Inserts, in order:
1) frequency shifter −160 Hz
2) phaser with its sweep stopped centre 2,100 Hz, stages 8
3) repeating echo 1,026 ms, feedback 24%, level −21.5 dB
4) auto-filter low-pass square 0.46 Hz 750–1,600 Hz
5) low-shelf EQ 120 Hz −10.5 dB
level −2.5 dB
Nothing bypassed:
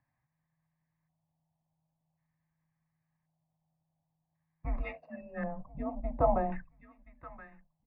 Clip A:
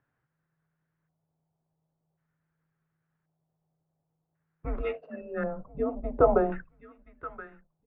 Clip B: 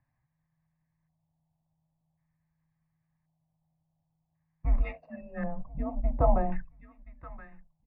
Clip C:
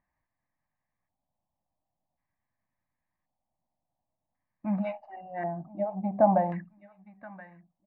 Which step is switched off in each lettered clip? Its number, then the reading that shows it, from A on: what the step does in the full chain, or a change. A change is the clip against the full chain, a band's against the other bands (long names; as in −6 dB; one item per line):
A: 2, 500 Hz band +4.0 dB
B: 5, 125 Hz band +7.0 dB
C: 1, 2 kHz band −5.0 dB